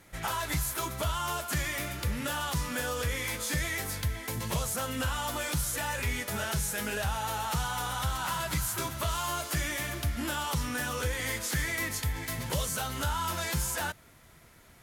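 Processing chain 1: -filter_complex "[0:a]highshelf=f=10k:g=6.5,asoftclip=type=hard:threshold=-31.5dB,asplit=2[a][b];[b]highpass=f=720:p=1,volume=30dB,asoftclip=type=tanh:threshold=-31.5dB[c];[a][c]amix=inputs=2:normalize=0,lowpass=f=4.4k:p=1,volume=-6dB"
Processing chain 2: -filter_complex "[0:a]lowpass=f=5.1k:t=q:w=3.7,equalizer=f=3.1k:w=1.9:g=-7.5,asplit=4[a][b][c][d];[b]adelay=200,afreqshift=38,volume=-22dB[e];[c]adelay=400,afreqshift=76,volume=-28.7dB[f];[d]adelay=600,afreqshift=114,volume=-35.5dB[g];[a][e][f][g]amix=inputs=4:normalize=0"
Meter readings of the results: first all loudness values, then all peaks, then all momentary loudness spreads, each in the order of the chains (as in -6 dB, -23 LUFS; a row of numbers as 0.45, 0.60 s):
-35.0, -31.5 LUFS; -31.5, -17.0 dBFS; 2, 3 LU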